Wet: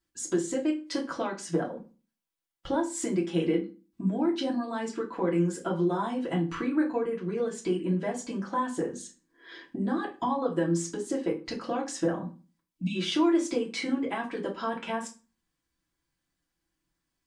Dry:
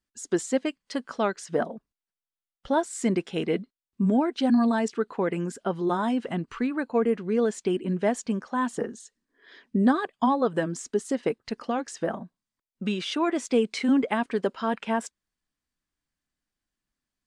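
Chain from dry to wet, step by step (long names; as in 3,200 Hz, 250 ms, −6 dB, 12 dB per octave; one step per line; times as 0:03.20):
healed spectral selection 0:12.68–0:12.93, 320–2,200 Hz before
downward compressor 5 to 1, threshold −32 dBFS, peak gain reduction 14.5 dB
convolution reverb RT60 0.35 s, pre-delay 3 ms, DRR −3 dB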